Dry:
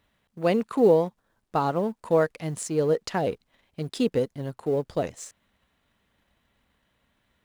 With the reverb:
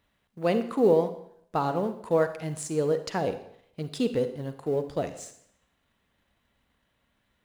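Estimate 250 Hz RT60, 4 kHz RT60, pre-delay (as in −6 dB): 0.65 s, 0.65 s, 32 ms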